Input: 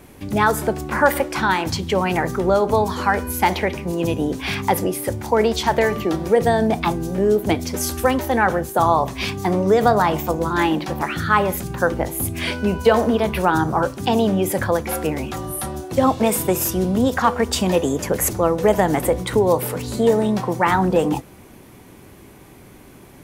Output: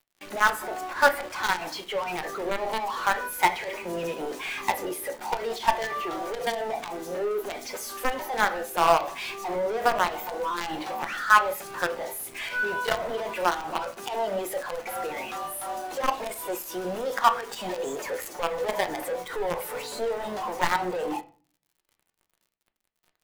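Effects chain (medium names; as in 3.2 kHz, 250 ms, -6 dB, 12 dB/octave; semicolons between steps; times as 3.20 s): high-pass 810 Hz 12 dB/octave; treble shelf 2.4 kHz -3 dB; in parallel at -2 dB: compression 8:1, threshold -31 dBFS, peak gain reduction 18.5 dB; on the sum: companded quantiser 2-bit; peak limiter -7.5 dBFS, peak gain reduction 7.5 dB; on a send at -6.5 dB: reverberation RT60 0.60 s, pre-delay 5 ms; on the sum: spectral contrast expander 1.5:1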